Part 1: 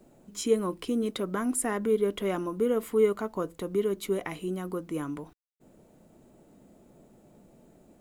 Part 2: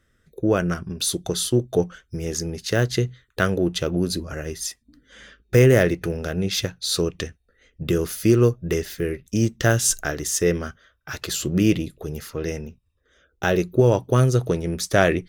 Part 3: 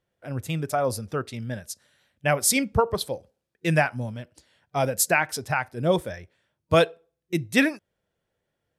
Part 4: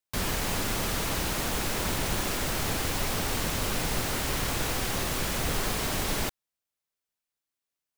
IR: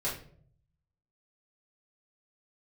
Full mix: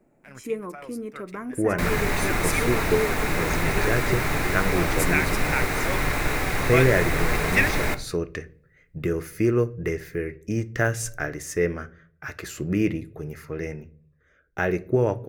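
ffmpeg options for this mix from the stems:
-filter_complex "[0:a]volume=-5.5dB,asplit=3[a][b][c];[b]volume=-22dB[d];[1:a]adelay=1150,volume=-5dB,asplit=2[e][f];[f]volume=-18dB[g];[2:a]tiltshelf=f=1.1k:g=-9,aeval=exprs='sgn(val(0))*max(abs(val(0))-0.00631,0)':c=same,volume=-5dB[h];[3:a]equalizer=f=3.8k:w=5:g=8,adelay=1650,volume=3dB,asplit=2[i][j];[j]volume=-13.5dB[k];[c]apad=whole_len=387420[l];[h][l]sidechaincompress=threshold=-37dB:ratio=5:attack=16:release=1100[m];[4:a]atrim=start_sample=2205[n];[d][g][k]amix=inputs=3:normalize=0[o];[o][n]afir=irnorm=-1:irlink=0[p];[a][e][m][i][p]amix=inputs=5:normalize=0,highshelf=f=2.7k:t=q:w=3:g=-6.5"

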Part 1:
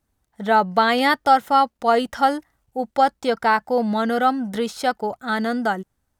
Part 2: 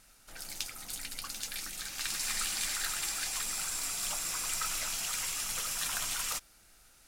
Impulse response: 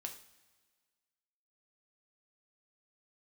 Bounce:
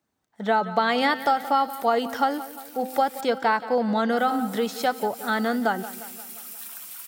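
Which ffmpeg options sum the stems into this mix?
-filter_complex "[0:a]bandreject=f=258.4:t=h:w=4,bandreject=f=516.8:t=h:w=4,bandreject=f=775.2:t=h:w=4,bandreject=f=1.0336k:t=h:w=4,bandreject=f=1.292k:t=h:w=4,bandreject=f=1.5504k:t=h:w=4,bandreject=f=1.8088k:t=h:w=4,bandreject=f=2.0672k:t=h:w=4,bandreject=f=2.3256k:t=h:w=4,bandreject=f=2.584k:t=h:w=4,bandreject=f=2.8424k:t=h:w=4,bandreject=f=3.1008k:t=h:w=4,bandreject=f=3.3592k:t=h:w=4,bandreject=f=3.6176k:t=h:w=4,bandreject=f=3.876k:t=h:w=4,bandreject=f=4.1344k:t=h:w=4,bandreject=f=4.3928k:t=h:w=4,bandreject=f=4.6512k:t=h:w=4,bandreject=f=4.9096k:t=h:w=4,bandreject=f=5.168k:t=h:w=4,bandreject=f=5.4264k:t=h:w=4,bandreject=f=5.6848k:t=h:w=4,bandreject=f=5.9432k:t=h:w=4,bandreject=f=6.2016k:t=h:w=4,bandreject=f=6.46k:t=h:w=4,bandreject=f=6.7184k:t=h:w=4,bandreject=f=6.9768k:t=h:w=4,bandreject=f=7.2352k:t=h:w=4,bandreject=f=7.4936k:t=h:w=4,acrossover=split=120[a][b];[b]acompressor=threshold=-17dB:ratio=6[c];[a][c]amix=inputs=2:normalize=0,volume=-0.5dB,asplit=3[d][e][f];[e]volume=-15.5dB[g];[1:a]volume=25.5dB,asoftclip=hard,volume=-25.5dB,aexciter=amount=7.7:drive=5.9:freq=9.4k,adelay=800,volume=-10.5dB,asplit=3[h][i][j];[h]atrim=end=3.21,asetpts=PTS-STARTPTS,afade=t=out:st=3.206:d=0.004:c=hsin[k];[i]atrim=start=3.21:end=4.17,asetpts=PTS-STARTPTS,volume=0[l];[j]atrim=start=4.17,asetpts=PTS-STARTPTS,afade=t=in:d=0.004:c=hsin[m];[k][l][m]concat=n=3:v=0:a=1,asplit=2[n][o];[o]volume=-23.5dB[p];[f]apad=whole_len=347482[q];[n][q]sidechaincompress=threshold=-33dB:ratio=8:attack=44:release=117[r];[g][p]amix=inputs=2:normalize=0,aecho=0:1:176|352|528|704|880|1056|1232|1408:1|0.56|0.314|0.176|0.0983|0.0551|0.0308|0.0173[s];[d][r][s]amix=inputs=3:normalize=0,highpass=170,equalizer=f=11k:t=o:w=0.57:g=-9.5"

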